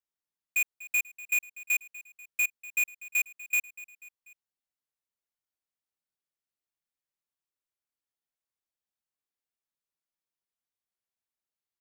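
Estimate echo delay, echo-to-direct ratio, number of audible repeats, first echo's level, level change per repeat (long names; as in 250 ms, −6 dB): 244 ms, −16.5 dB, 3, −18.0 dB, −5.0 dB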